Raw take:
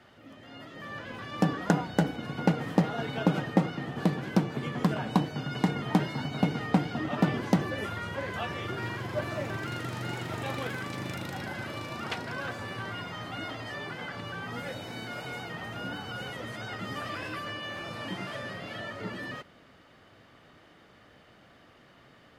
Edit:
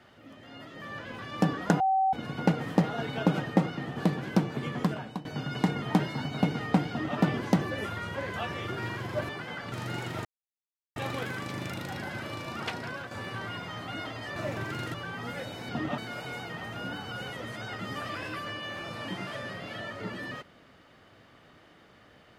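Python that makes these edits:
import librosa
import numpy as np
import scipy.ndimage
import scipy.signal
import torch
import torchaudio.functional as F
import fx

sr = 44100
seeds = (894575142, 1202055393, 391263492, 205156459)

y = fx.edit(x, sr, fx.bleep(start_s=1.8, length_s=0.33, hz=767.0, db=-21.5),
    fx.fade_out_to(start_s=4.76, length_s=0.49, floor_db=-20.0),
    fx.duplicate(start_s=6.89, length_s=0.29, to_s=14.98),
    fx.swap(start_s=9.29, length_s=0.58, other_s=13.8, other_length_s=0.43),
    fx.insert_silence(at_s=10.4, length_s=0.71),
    fx.fade_out_to(start_s=12.28, length_s=0.27, floor_db=-8.0), tone=tone)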